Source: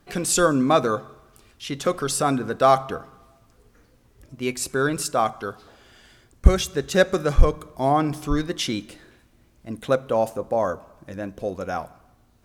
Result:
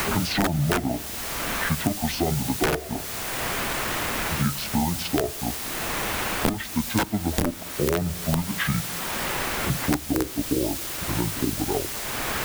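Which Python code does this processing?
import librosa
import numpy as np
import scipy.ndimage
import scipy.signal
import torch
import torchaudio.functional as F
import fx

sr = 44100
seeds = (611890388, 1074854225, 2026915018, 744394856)

y = fx.pitch_heads(x, sr, semitones=-10.0)
y = fx.high_shelf(y, sr, hz=2100.0, db=-8.5)
y = fx.quant_dither(y, sr, seeds[0], bits=6, dither='triangular')
y = (np.mod(10.0 ** (12.0 / 20.0) * y + 1.0, 2.0) - 1.0) / 10.0 ** (12.0 / 20.0)
y = fx.band_squash(y, sr, depth_pct=100)
y = F.gain(torch.from_numpy(y), -1.0).numpy()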